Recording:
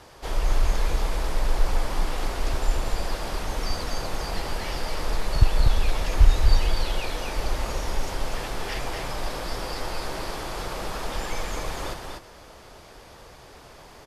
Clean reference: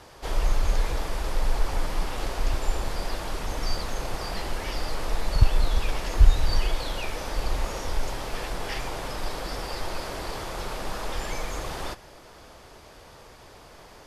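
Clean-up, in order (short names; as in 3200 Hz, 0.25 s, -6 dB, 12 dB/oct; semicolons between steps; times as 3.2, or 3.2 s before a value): inverse comb 0.243 s -4 dB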